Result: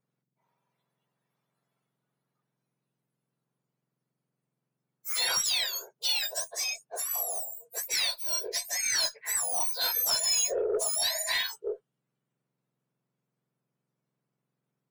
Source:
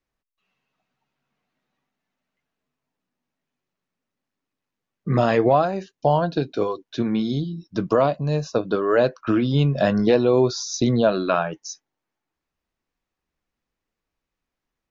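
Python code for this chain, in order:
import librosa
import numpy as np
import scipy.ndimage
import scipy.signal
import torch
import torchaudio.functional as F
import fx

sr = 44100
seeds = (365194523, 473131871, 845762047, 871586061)

y = fx.octave_mirror(x, sr, pivot_hz=1600.0)
y = fx.cheby_harmonics(y, sr, harmonics=(5, 8), levels_db=(-13, -33), full_scale_db=-9.5)
y = F.gain(torch.from_numpy(y), -8.5).numpy()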